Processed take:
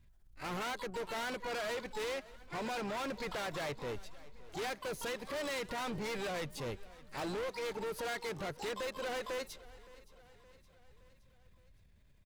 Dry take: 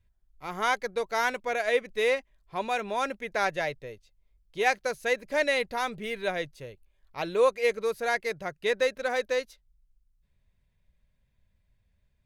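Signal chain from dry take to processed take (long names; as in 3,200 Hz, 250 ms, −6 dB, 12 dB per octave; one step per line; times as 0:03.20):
in parallel at −6 dB: slack as between gear wheels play −38 dBFS
on the sum: downward compressor 6 to 1, threshold −33 dBFS, peak gain reduction 17.5 dB
transient designer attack −5 dB, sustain +5 dB
pitch-shifted copies added −7 semitones −17 dB, +12 semitones −10 dB
hard clipping −40 dBFS, distortion −6 dB
on a send: repeating echo 568 ms, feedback 56%, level −20 dB
on the sum: level +4 dB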